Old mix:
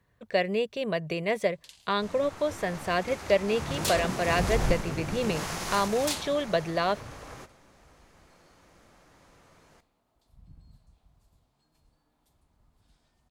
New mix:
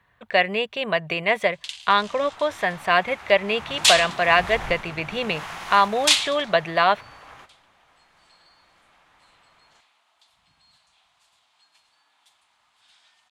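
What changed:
first sound: add meter weighting curve ITU-R 468
second sound −9.0 dB
master: add flat-topped bell 1,600 Hz +11 dB 2.7 octaves

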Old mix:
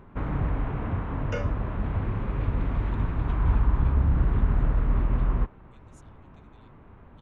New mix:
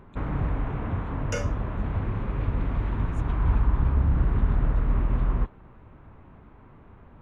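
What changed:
speech: entry −2.80 s
second sound: remove high-frequency loss of the air 230 metres

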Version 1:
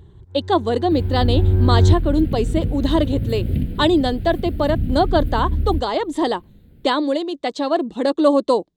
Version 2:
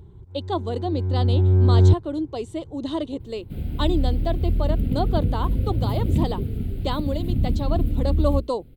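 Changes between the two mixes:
speech −8.5 dB
second sound: entry +2.60 s
master: add parametric band 1,700 Hz −8 dB 0.35 octaves

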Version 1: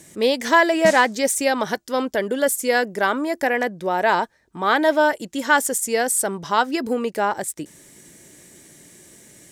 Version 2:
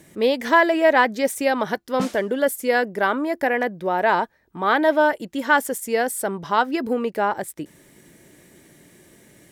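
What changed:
background: entry +1.15 s
master: add parametric band 7,200 Hz −11 dB 1.4 octaves

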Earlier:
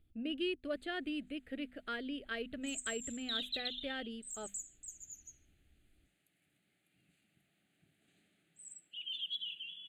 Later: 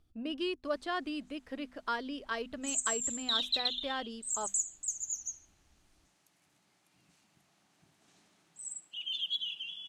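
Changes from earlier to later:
background +3.5 dB
master: remove phaser with its sweep stopped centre 2,400 Hz, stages 4

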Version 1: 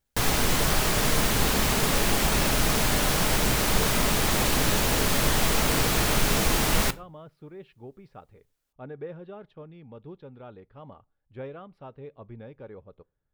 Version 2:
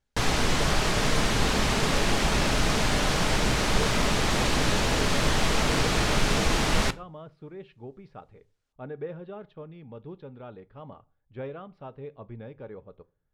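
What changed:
speech: send +10.0 dB
master: add low-pass filter 6,500 Hz 12 dB per octave

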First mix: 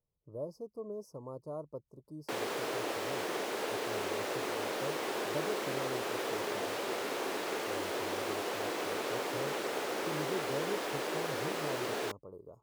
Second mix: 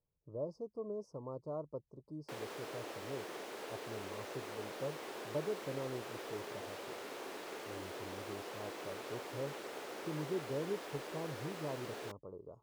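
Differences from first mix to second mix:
speech: add high-frequency loss of the air 100 metres
background −10.0 dB

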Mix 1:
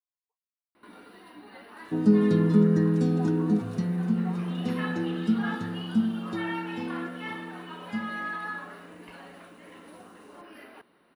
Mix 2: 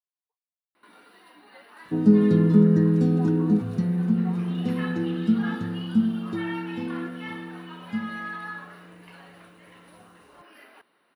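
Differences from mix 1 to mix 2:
first sound: add low-shelf EQ 450 Hz −11.5 dB
second sound: add spectral tilt −1.5 dB per octave

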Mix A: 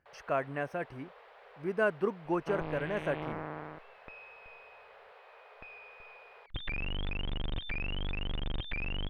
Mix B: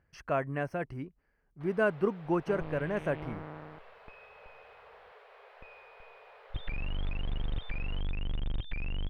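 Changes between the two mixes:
first sound: entry +1.55 s
second sound −6.0 dB
master: add low-shelf EQ 200 Hz +9.5 dB

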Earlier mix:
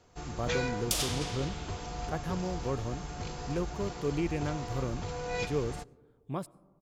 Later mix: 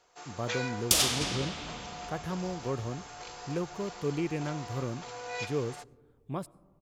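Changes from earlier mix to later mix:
first sound: add high-pass filter 600 Hz 12 dB per octave
second sound +7.0 dB

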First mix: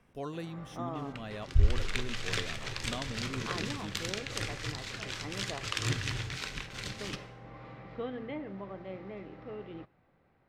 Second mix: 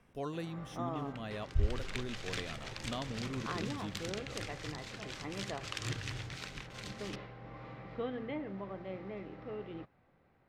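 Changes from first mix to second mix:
second sound −4.5 dB
reverb: off

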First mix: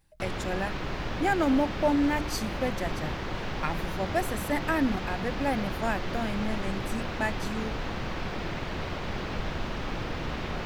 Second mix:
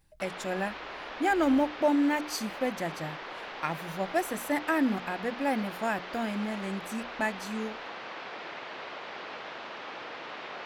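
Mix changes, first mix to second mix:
background: add band-pass filter 540–4,400 Hz
reverb: off

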